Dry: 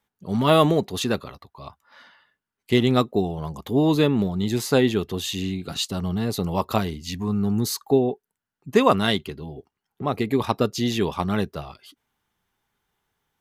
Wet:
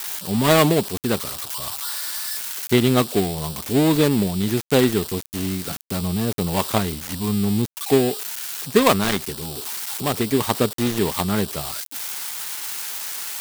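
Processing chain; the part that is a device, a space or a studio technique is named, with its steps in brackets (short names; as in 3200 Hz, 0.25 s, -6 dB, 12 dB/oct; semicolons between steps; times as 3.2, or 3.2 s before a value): budget class-D amplifier (switching dead time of 0.23 ms; switching spikes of -14 dBFS); gain +2 dB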